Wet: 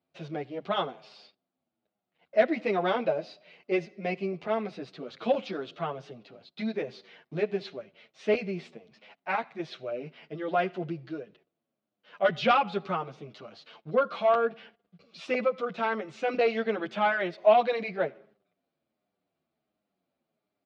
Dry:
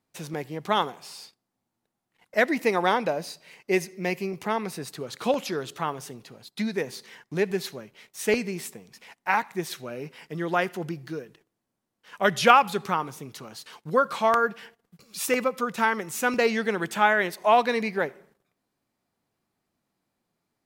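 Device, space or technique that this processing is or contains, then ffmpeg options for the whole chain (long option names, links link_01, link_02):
barber-pole flanger into a guitar amplifier: -filter_complex "[0:a]asplit=2[link_01][link_02];[link_02]adelay=8.2,afreqshift=-1.4[link_03];[link_01][link_03]amix=inputs=2:normalize=1,asoftclip=type=tanh:threshold=-14.5dB,highpass=84,equalizer=frequency=110:width_type=q:width=4:gain=-9,equalizer=frequency=630:width_type=q:width=4:gain=8,equalizer=frequency=950:width_type=q:width=4:gain=-7,equalizer=frequency=1800:width_type=q:width=4:gain=-6,lowpass=frequency=3900:width=0.5412,lowpass=frequency=3900:width=1.3066"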